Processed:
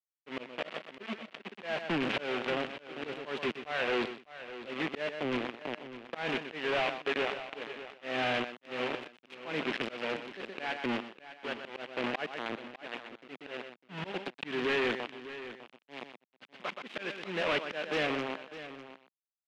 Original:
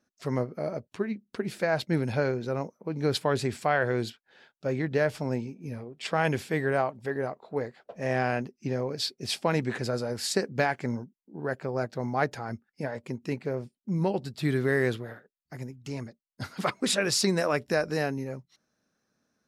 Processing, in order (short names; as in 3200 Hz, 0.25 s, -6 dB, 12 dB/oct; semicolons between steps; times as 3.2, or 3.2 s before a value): switching dead time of 0.12 ms; bit-crush 5-bit; HPF 200 Hz 24 dB/oct; echo 0.124 s -15 dB; auto swell 0.279 s; hard clip -27.5 dBFS, distortion -8 dB; synth low-pass 2800 Hz, resonance Q 2.5; echo 0.602 s -13.5 dB